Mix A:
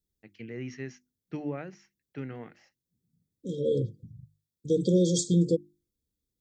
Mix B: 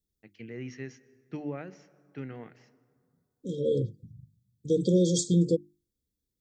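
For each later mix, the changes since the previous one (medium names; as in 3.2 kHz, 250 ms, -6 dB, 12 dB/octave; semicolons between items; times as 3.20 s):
first voice -3.5 dB; reverb: on, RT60 2.1 s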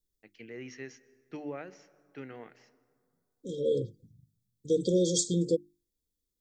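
second voice: remove high-pass 130 Hz 6 dB/octave; master: add tone controls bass -11 dB, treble +2 dB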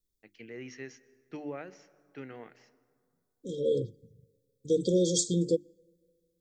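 second voice: send on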